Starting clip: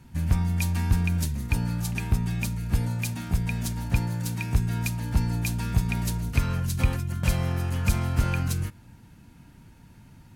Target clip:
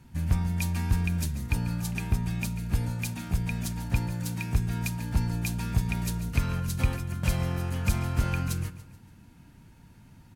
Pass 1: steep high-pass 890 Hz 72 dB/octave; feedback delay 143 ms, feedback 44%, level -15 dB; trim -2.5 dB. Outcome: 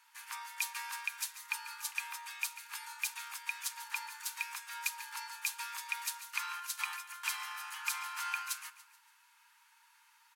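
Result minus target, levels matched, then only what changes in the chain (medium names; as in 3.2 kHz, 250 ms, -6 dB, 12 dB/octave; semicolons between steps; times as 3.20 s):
1 kHz band +7.5 dB
remove: steep high-pass 890 Hz 72 dB/octave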